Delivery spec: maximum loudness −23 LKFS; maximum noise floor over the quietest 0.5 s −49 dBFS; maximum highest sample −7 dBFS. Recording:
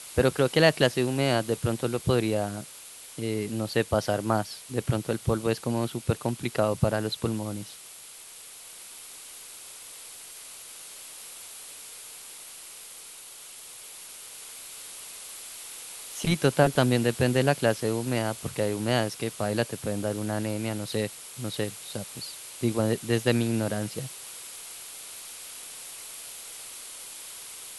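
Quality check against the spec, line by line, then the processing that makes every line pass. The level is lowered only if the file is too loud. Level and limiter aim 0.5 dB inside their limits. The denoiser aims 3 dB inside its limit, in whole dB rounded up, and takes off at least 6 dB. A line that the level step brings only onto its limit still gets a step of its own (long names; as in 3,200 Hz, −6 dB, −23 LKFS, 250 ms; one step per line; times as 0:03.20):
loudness −28.5 LKFS: in spec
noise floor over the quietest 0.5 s −46 dBFS: out of spec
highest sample −6.0 dBFS: out of spec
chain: broadband denoise 6 dB, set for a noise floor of −46 dBFS
brickwall limiter −7.5 dBFS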